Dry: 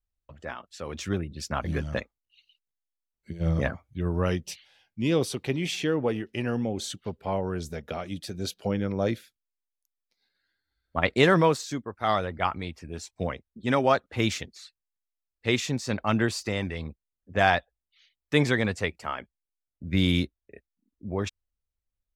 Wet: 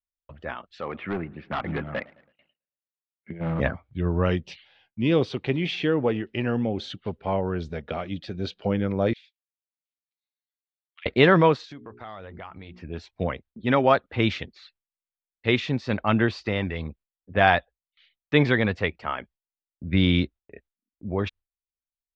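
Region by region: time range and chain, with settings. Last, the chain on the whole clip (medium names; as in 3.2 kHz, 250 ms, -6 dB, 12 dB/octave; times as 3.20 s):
0.81–3.60 s: cabinet simulation 150–2400 Hz, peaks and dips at 770 Hz +6 dB, 1.2 kHz +6 dB, 2.1 kHz +6 dB + overload inside the chain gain 26.5 dB + modulated delay 110 ms, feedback 51%, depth 159 cents, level -23 dB
9.13–11.06 s: steep high-pass 2.2 kHz + compression, threshold -45 dBFS
11.65–12.83 s: hum notches 60/120/180/240/300/360/420 Hz + compression, threshold -40 dBFS
whole clip: gate with hold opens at -53 dBFS; low-pass 3.8 kHz 24 dB/octave; trim +3 dB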